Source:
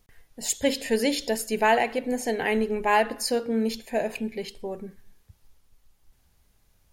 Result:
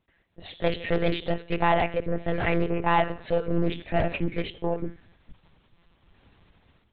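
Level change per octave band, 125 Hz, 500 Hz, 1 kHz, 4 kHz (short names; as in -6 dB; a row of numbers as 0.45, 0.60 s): +13.5, -1.0, -0.5, -4.5 dB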